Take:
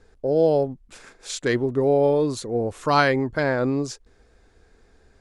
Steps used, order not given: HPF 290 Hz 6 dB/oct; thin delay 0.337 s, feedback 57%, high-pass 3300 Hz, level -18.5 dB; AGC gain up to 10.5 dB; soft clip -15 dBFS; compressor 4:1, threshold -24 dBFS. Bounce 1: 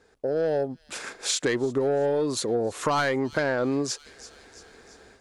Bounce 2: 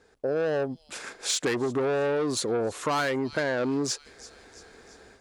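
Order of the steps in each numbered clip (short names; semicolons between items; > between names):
HPF > soft clip > AGC > thin delay > compressor; AGC > thin delay > soft clip > HPF > compressor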